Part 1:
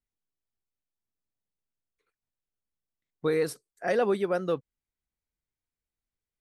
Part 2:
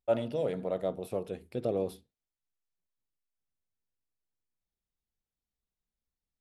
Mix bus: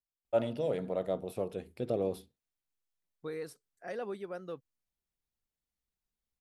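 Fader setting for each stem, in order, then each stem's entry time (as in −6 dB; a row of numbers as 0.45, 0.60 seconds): −13.5, −1.0 decibels; 0.00, 0.25 seconds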